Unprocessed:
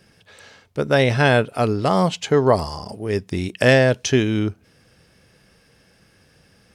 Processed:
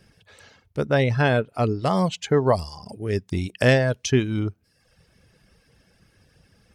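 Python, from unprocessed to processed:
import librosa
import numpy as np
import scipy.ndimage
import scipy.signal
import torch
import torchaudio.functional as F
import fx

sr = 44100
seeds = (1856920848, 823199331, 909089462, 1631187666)

y = fx.high_shelf(x, sr, hz=fx.line((0.85, 4800.0), (1.83, 8000.0)), db=-11.0, at=(0.85, 1.83), fade=0.02)
y = fx.dereverb_blind(y, sr, rt60_s=0.77)
y = fx.low_shelf(y, sr, hz=110.0, db=9.5)
y = y * 10.0 ** (-3.5 / 20.0)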